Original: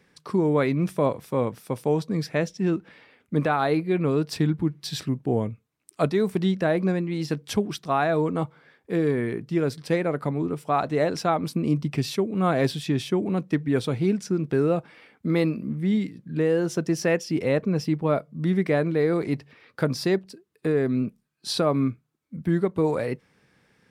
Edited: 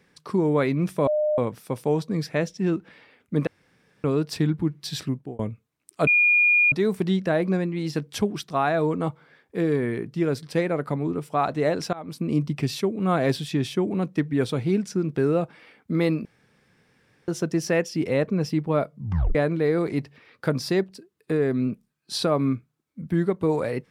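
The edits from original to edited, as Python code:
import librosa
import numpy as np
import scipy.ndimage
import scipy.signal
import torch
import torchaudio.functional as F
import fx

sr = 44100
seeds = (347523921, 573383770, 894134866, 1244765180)

y = fx.edit(x, sr, fx.bleep(start_s=1.07, length_s=0.31, hz=606.0, db=-19.5),
    fx.room_tone_fill(start_s=3.47, length_s=0.57),
    fx.fade_out_span(start_s=5.08, length_s=0.31),
    fx.insert_tone(at_s=6.07, length_s=0.65, hz=2430.0, db=-15.0),
    fx.fade_in_from(start_s=11.28, length_s=0.39, floor_db=-23.5),
    fx.room_tone_fill(start_s=15.6, length_s=1.03),
    fx.tape_stop(start_s=18.32, length_s=0.38), tone=tone)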